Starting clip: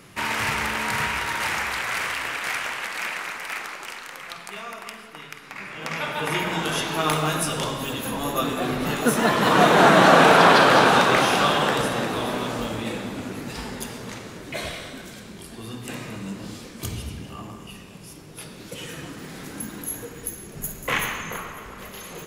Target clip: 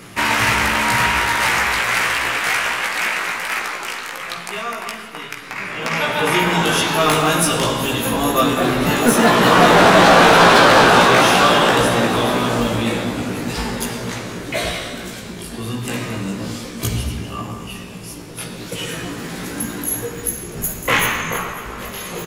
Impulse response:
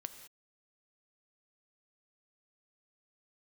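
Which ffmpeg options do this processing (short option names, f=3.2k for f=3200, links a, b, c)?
-filter_complex "[0:a]asoftclip=type=tanh:threshold=-16dB,asplit=2[a][b];[b]adelay=17,volume=-4dB[c];[a][c]amix=inputs=2:normalize=0,volume=8dB"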